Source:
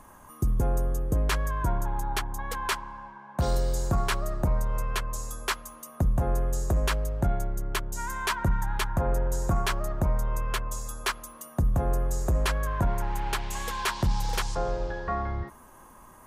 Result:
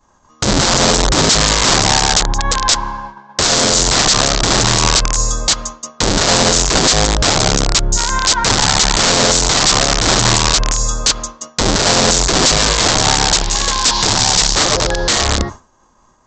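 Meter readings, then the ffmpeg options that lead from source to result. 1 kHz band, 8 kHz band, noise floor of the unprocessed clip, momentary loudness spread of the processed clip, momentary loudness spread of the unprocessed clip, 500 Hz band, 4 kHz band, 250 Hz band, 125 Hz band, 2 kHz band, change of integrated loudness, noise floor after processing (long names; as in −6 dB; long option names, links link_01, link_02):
+15.5 dB, +27.0 dB, −51 dBFS, 6 LU, 6 LU, +15.5 dB, +26.5 dB, +15.5 dB, +9.0 dB, +17.0 dB, +17.5 dB, −52 dBFS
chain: -af "bandreject=frequency=47.87:width_type=h:width=4,bandreject=frequency=95.74:width_type=h:width=4,bandreject=frequency=143.61:width_type=h:width=4,bandreject=frequency=191.48:width_type=h:width=4,bandreject=frequency=239.35:width_type=h:width=4,bandreject=frequency=287.22:width_type=h:width=4,aresample=16000,aeval=exprs='(mod(16.8*val(0)+1,2)-1)/16.8':channel_layout=same,aresample=44100,highshelf=frequency=3300:width_type=q:width=1.5:gain=6.5,agate=range=-33dB:threshold=-38dB:ratio=3:detection=peak,alimiter=level_in=19.5dB:limit=-1dB:release=50:level=0:latency=1,volume=-1dB"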